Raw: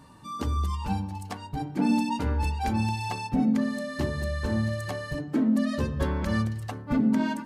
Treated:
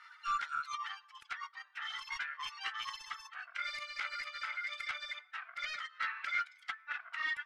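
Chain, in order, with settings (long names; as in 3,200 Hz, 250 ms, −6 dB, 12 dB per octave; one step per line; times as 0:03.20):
stylus tracing distortion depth 0.039 ms
reverb reduction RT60 1.3 s
soft clipping −23.5 dBFS, distortion −13 dB
elliptic high-pass filter 1,200 Hz, stop band 80 dB
in parallel at −4 dB: hard clipping −38.5 dBFS, distortion −14 dB
on the sum: formants moved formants +3 semitones
low-pass filter 2,400 Hz 12 dB per octave
amplitude modulation by smooth noise, depth 55%
level +7 dB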